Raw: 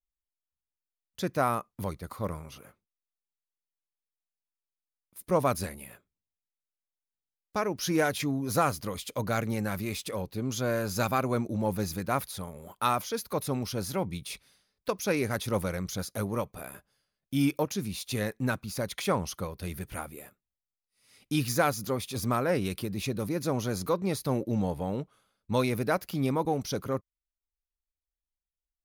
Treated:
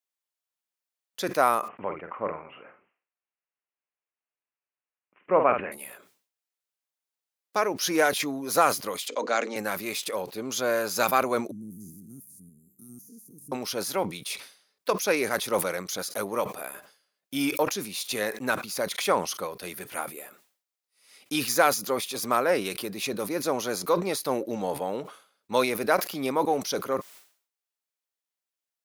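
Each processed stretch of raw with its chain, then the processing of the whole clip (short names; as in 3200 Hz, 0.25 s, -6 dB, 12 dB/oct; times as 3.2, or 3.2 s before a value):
1.68–5.72 steep low-pass 2900 Hz 96 dB/oct + doubler 49 ms -10 dB
9.08–9.56 Chebyshev band-pass 240–7400 Hz, order 4 + notches 50/100/150/200/250/300/350/400/450/500 Hz
11.51–13.52 stepped spectrum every 0.1 s + inverse Chebyshev band-stop 560–3600 Hz, stop band 50 dB + high shelf 3900 Hz -11 dB
whole clip: HPF 400 Hz 12 dB/oct; sustainer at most 120 dB/s; gain +5.5 dB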